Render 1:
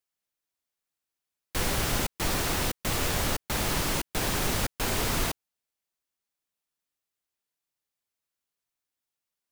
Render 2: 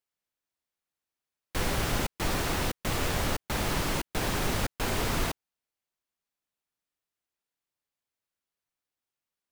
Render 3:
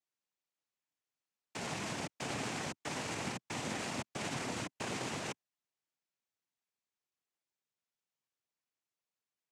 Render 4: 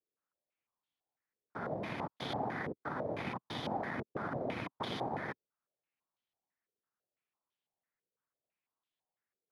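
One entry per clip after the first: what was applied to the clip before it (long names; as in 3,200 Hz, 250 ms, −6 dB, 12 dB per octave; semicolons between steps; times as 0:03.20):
high-shelf EQ 4,100 Hz −6 dB
brickwall limiter −24 dBFS, peak gain reduction 8.5 dB; cochlear-implant simulation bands 4; level −3.5 dB
samples in bit-reversed order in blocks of 16 samples; low-pass on a step sequencer 6 Hz 450–3,300 Hz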